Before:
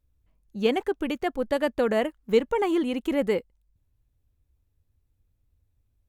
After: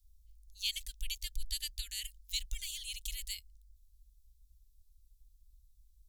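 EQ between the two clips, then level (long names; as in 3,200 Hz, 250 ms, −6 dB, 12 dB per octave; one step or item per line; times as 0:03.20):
inverse Chebyshev band-stop filter 190–1,100 Hz, stop band 70 dB
+10.0 dB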